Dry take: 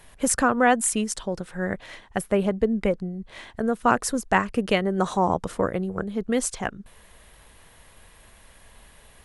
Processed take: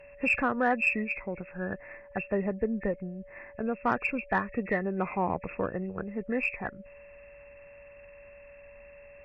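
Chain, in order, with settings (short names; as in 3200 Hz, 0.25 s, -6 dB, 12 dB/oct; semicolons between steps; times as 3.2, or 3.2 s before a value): nonlinear frequency compression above 1700 Hz 4:1; added harmonics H 4 -37 dB, 5 -30 dB, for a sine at -5 dBFS; whine 570 Hz -41 dBFS; gain -8 dB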